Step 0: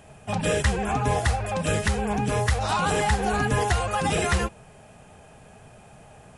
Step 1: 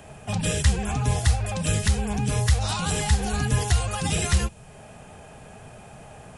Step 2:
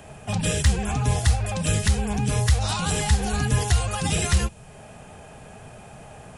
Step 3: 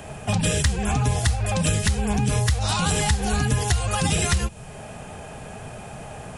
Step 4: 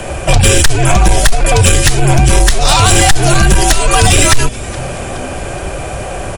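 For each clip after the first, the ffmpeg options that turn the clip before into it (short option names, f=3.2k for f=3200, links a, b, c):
-filter_complex "[0:a]acrossover=split=180|3000[a][b][c];[b]acompressor=threshold=-45dB:ratio=2[d];[a][d][c]amix=inputs=3:normalize=0,volume=4.5dB"
-af "aeval=exprs='0.447*(cos(1*acos(clip(val(0)/0.447,-1,1)))-cos(1*PI/2))+0.0316*(cos(5*acos(clip(val(0)/0.447,-1,1)))-cos(5*PI/2))+0.0141*(cos(7*acos(clip(val(0)/0.447,-1,1)))-cos(7*PI/2))+0.00282*(cos(8*acos(clip(val(0)/0.447,-1,1)))-cos(8*PI/2))':c=same"
-af "acompressor=threshold=-24dB:ratio=6,volume=6dB"
-filter_complex "[0:a]afreqshift=-73,asplit=5[a][b][c][d][e];[b]adelay=420,afreqshift=-130,volume=-22.5dB[f];[c]adelay=840,afreqshift=-260,volume=-27.1dB[g];[d]adelay=1260,afreqshift=-390,volume=-31.7dB[h];[e]adelay=1680,afreqshift=-520,volume=-36.2dB[i];[a][f][g][h][i]amix=inputs=5:normalize=0,aeval=exprs='0.447*sin(PI/2*2.24*val(0)/0.447)':c=same,volume=5.5dB"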